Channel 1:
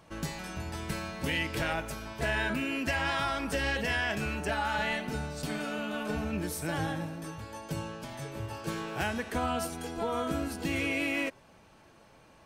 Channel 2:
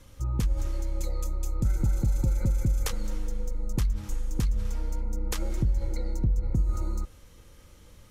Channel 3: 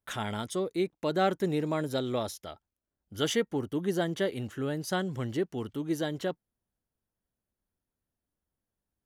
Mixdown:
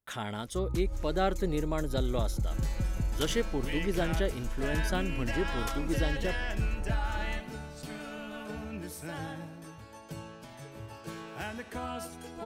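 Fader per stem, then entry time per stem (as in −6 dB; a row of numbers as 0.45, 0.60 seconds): −6.5, −6.5, −2.5 decibels; 2.40, 0.35, 0.00 seconds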